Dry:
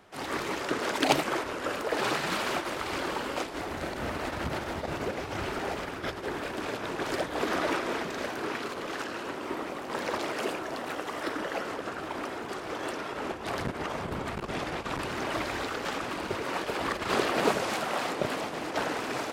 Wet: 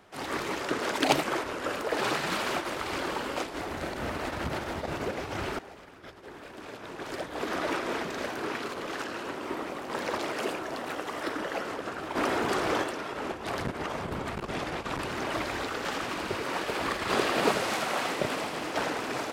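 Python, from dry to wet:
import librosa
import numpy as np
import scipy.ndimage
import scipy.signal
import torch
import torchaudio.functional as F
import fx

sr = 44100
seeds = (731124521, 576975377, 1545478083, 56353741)

y = fx.env_flatten(x, sr, amount_pct=50, at=(12.15, 12.82), fade=0.02)
y = fx.echo_wet_highpass(y, sr, ms=82, feedback_pct=76, hz=1500.0, wet_db=-6, at=(15.67, 18.9))
y = fx.edit(y, sr, fx.fade_in_from(start_s=5.59, length_s=2.36, curve='qua', floor_db=-14.5), tone=tone)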